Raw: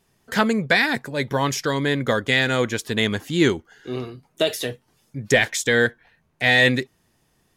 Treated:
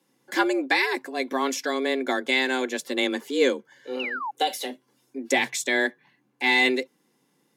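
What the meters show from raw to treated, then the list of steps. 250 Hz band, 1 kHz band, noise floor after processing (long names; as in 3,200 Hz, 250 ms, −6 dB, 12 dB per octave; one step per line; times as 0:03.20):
−4.5 dB, −0.5 dB, −69 dBFS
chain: sound drawn into the spectrogram fall, 0:03.99–0:04.31, 660–2,900 Hz −27 dBFS
frequency shifter +130 Hz
notch comb filter 630 Hz
level −2.5 dB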